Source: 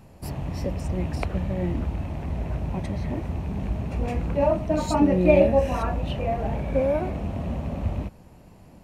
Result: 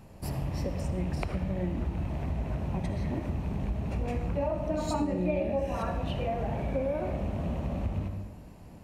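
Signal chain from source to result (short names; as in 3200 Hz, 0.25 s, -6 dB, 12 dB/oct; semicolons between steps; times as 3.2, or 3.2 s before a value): reverb RT60 1.0 s, pre-delay 53 ms, DRR 7.5 dB; compressor 4:1, threshold -26 dBFS, peak gain reduction 13 dB; gain -1.5 dB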